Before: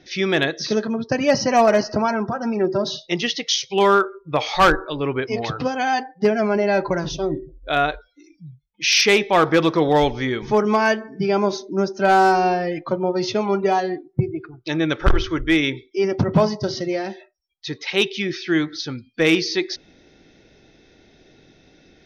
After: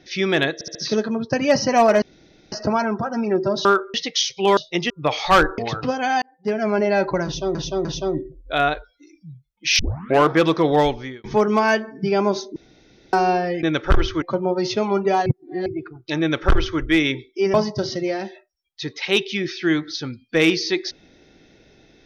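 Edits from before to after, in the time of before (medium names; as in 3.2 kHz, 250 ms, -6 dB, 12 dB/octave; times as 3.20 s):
0.54 s: stutter 0.07 s, 4 plays
1.81 s: insert room tone 0.50 s
2.94–3.27 s: swap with 3.90–4.19 s
4.87–5.35 s: delete
5.99–6.51 s: fade in
7.02–7.32 s: loop, 3 plays
8.96 s: tape start 0.49 s
9.96–10.41 s: fade out
11.73–12.30 s: room tone
13.84–14.24 s: reverse
14.79–15.38 s: copy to 12.80 s
16.12–16.39 s: delete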